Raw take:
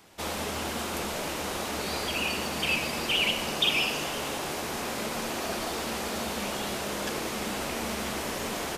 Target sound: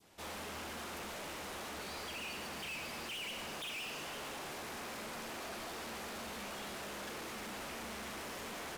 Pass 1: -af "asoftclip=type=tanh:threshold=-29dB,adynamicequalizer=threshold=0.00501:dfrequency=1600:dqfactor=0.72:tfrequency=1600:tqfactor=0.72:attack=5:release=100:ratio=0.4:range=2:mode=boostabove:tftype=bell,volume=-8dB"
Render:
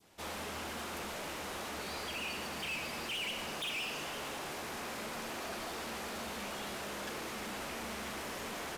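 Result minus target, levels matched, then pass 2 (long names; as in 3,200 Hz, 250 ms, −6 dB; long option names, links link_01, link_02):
soft clipping: distortion −4 dB
-af "asoftclip=type=tanh:threshold=-35dB,adynamicequalizer=threshold=0.00501:dfrequency=1600:dqfactor=0.72:tfrequency=1600:tqfactor=0.72:attack=5:release=100:ratio=0.4:range=2:mode=boostabove:tftype=bell,volume=-8dB"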